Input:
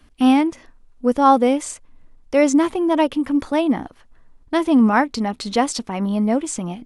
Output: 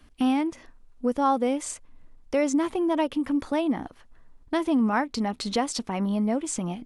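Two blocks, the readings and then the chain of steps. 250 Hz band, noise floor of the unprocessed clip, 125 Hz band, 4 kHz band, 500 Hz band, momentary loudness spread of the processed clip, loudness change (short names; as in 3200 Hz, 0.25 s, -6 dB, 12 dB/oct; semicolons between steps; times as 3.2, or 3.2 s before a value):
-7.5 dB, -51 dBFS, n/a, -5.5 dB, -7.5 dB, 7 LU, -7.5 dB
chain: compressor 2:1, threshold -22 dBFS, peak gain reduction 7.5 dB; gain -2.5 dB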